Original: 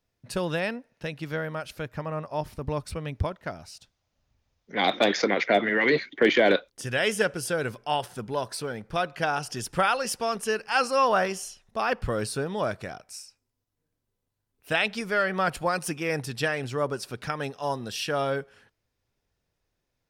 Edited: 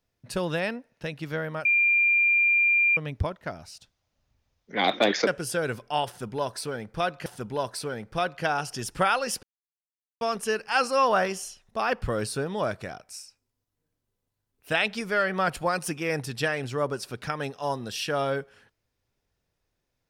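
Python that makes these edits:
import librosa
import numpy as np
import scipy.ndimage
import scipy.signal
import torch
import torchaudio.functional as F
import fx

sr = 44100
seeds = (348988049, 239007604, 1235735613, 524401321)

y = fx.edit(x, sr, fx.bleep(start_s=1.65, length_s=1.32, hz=2390.0, db=-18.0),
    fx.cut(start_s=5.27, length_s=1.96),
    fx.repeat(start_s=8.04, length_s=1.18, count=2),
    fx.insert_silence(at_s=10.21, length_s=0.78), tone=tone)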